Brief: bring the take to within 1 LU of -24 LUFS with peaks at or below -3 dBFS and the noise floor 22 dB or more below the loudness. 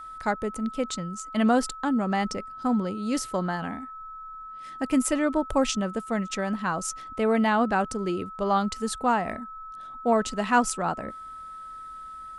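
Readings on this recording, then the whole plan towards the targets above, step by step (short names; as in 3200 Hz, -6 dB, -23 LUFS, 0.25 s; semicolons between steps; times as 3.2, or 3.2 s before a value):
steady tone 1300 Hz; tone level -38 dBFS; loudness -26.5 LUFS; peak -9.0 dBFS; loudness target -24.0 LUFS
-> notch 1300 Hz, Q 30; gain +2.5 dB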